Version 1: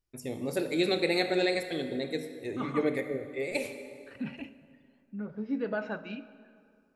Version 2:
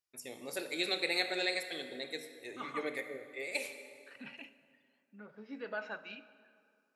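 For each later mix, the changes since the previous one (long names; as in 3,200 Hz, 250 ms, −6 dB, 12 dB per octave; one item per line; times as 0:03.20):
master: add high-pass filter 1,400 Hz 6 dB per octave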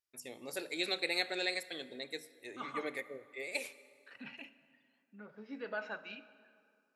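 first voice: send −9.5 dB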